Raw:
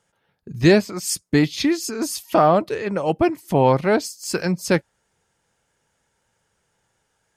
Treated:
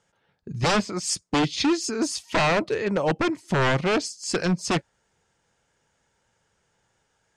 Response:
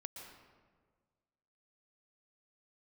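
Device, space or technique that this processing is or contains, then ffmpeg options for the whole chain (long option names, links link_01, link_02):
synthesiser wavefolder: -af "aeval=exprs='0.168*(abs(mod(val(0)/0.168+3,4)-2)-1)':channel_layout=same,lowpass=frequency=8200:width=0.5412,lowpass=frequency=8200:width=1.3066"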